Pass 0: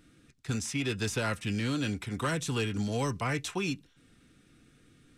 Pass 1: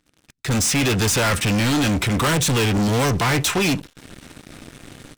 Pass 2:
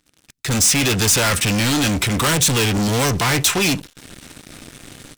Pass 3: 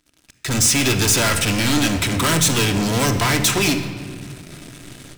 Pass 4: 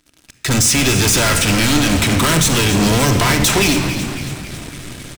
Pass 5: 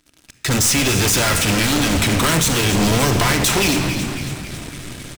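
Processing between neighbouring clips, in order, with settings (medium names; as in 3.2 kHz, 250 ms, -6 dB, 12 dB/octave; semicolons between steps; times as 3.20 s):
level rider gain up to 7 dB; waveshaping leveller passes 5; trim -1.5 dB
treble shelf 3.1 kHz +7 dB
reverberation RT60 2.0 s, pre-delay 3 ms, DRR 6 dB; trim -1.5 dB
peak limiter -12.5 dBFS, peak gain reduction 6 dB; on a send: frequency-shifting echo 275 ms, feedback 56%, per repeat -69 Hz, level -10.5 dB; on the sum: trim +6 dB
one-sided wavefolder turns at -12.5 dBFS; trim -1 dB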